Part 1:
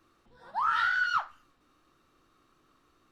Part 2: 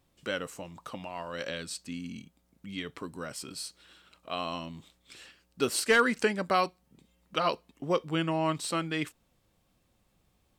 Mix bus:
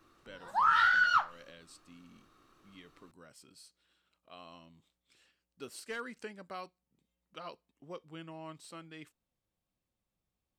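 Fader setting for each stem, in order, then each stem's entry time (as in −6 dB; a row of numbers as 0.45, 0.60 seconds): +1.5, −17.5 decibels; 0.00, 0.00 seconds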